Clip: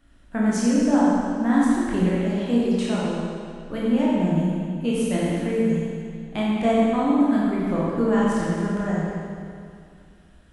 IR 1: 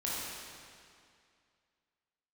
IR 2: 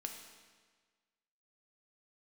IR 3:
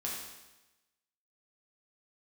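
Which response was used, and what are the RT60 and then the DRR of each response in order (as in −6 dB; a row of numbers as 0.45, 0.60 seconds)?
1; 2.3, 1.5, 1.0 seconds; −7.5, 3.0, −5.0 decibels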